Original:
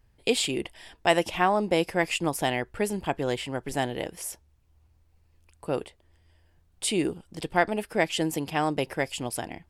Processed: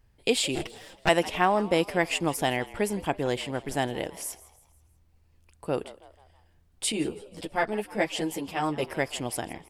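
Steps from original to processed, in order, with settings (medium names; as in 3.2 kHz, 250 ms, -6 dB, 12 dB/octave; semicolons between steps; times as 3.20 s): 0.55–1.09 s: comb filter that takes the minimum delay 6.3 ms; frequency-shifting echo 162 ms, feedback 46%, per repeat +92 Hz, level -18.5 dB; 6.92–8.83 s: three-phase chorus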